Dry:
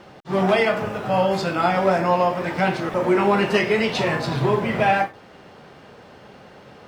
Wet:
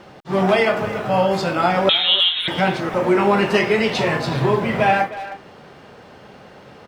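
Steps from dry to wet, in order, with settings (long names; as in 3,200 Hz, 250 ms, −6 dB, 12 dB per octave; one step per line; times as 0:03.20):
0:01.89–0:02.48: voice inversion scrambler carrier 3,900 Hz
far-end echo of a speakerphone 310 ms, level −13 dB
level +2 dB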